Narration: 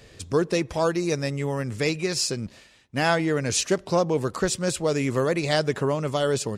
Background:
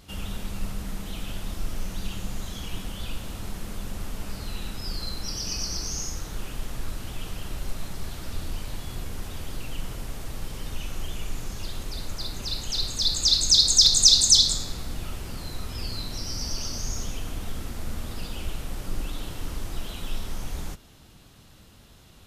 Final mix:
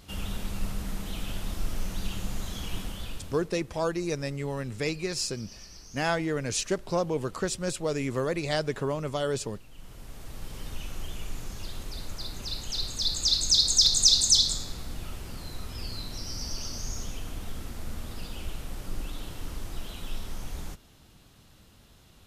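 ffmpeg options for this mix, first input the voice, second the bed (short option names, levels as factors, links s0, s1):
-filter_complex "[0:a]adelay=3000,volume=0.531[s0];[1:a]volume=4.47,afade=t=out:st=2.79:d=0.7:silence=0.141254,afade=t=in:st=9.71:d=0.89:silence=0.211349[s1];[s0][s1]amix=inputs=2:normalize=0"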